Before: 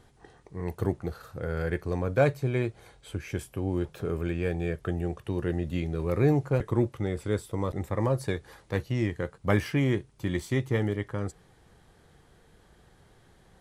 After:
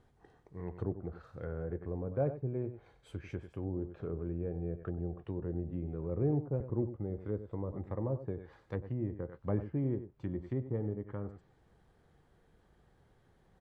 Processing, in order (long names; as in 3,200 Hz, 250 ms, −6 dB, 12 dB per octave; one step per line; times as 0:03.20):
single-tap delay 94 ms −11.5 dB
treble cut that deepens with the level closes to 650 Hz, closed at −25 dBFS
one half of a high-frequency compander decoder only
level −8 dB